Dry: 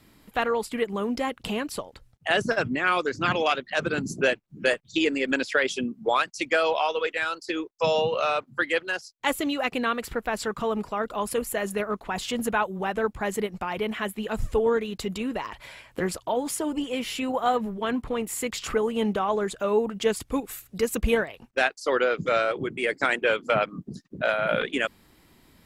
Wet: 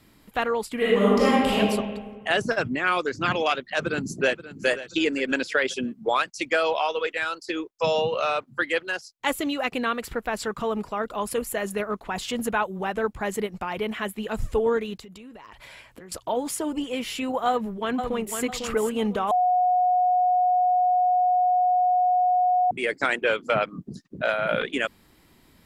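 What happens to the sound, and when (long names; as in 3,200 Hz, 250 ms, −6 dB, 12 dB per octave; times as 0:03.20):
0:00.76–0:01.57: thrown reverb, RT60 1.5 s, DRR −8.5 dB
0:03.64–0:04.67: delay throw 530 ms, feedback 35%, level −14.5 dB
0:14.97–0:16.12: downward compressor 20 to 1, threshold −40 dBFS
0:17.48–0:18.39: delay throw 500 ms, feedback 35%, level −6 dB
0:19.31–0:22.71: beep over 727 Hz −17.5 dBFS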